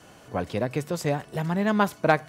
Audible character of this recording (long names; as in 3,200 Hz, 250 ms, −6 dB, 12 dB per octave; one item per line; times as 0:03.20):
background noise floor −51 dBFS
spectral slope −5.5 dB per octave